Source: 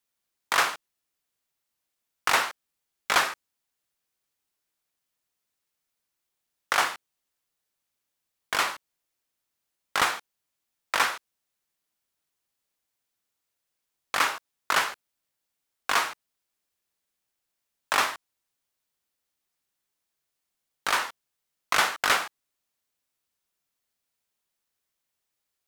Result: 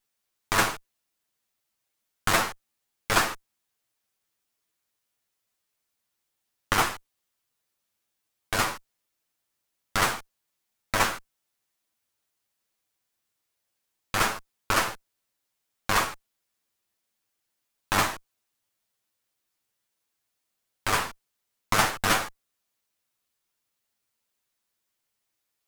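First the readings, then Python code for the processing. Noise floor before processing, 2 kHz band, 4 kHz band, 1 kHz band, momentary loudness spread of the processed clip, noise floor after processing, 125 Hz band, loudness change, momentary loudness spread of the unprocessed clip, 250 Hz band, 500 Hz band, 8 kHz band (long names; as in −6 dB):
−83 dBFS, −1.5 dB, −1.0 dB, 0.0 dB, 15 LU, −81 dBFS, +16.5 dB, 0.0 dB, 15 LU, +10.0 dB, +3.5 dB, +2.0 dB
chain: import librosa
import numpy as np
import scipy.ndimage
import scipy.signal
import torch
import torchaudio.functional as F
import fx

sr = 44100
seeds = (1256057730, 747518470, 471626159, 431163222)

y = fx.lower_of_two(x, sr, delay_ms=9.1)
y = fx.dynamic_eq(y, sr, hz=3200.0, q=0.77, threshold_db=-40.0, ratio=4.0, max_db=-5)
y = y * 10.0 ** (3.5 / 20.0)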